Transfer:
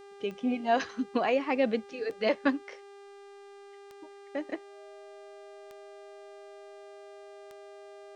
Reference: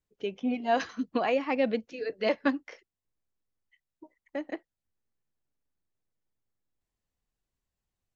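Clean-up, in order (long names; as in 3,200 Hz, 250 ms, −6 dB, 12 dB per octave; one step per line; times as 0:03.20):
click removal
hum removal 400.2 Hz, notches 24
notch filter 630 Hz, Q 30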